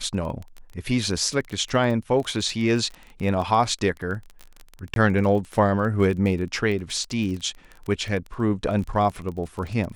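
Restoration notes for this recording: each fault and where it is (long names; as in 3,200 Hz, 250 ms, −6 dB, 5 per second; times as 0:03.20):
surface crackle 21 per second −29 dBFS
0:04.94–0:04.96: drop-out 22 ms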